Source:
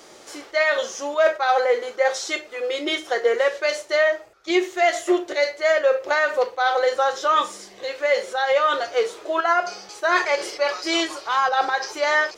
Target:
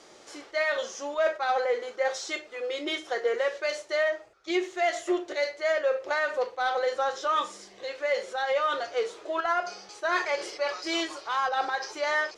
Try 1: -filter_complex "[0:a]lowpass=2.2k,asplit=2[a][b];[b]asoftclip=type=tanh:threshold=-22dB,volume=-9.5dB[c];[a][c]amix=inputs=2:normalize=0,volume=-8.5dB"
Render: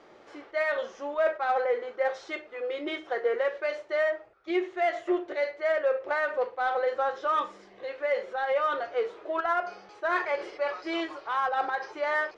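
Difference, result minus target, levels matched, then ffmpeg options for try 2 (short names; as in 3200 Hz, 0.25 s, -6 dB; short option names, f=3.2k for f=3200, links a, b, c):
8000 Hz band -16.5 dB
-filter_complex "[0:a]lowpass=8.5k,asplit=2[a][b];[b]asoftclip=type=tanh:threshold=-22dB,volume=-9.5dB[c];[a][c]amix=inputs=2:normalize=0,volume=-8.5dB"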